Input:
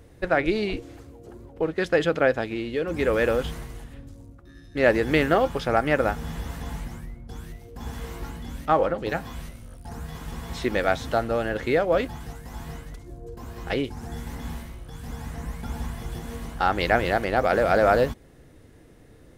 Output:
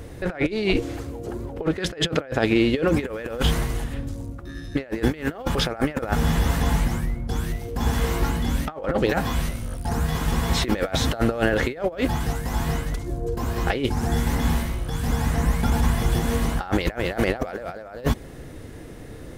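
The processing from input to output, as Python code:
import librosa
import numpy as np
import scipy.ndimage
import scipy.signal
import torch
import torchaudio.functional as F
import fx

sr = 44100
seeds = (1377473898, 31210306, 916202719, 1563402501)

y = fx.over_compress(x, sr, threshold_db=-29.0, ratio=-0.5)
y = y * 10.0 ** (7.5 / 20.0)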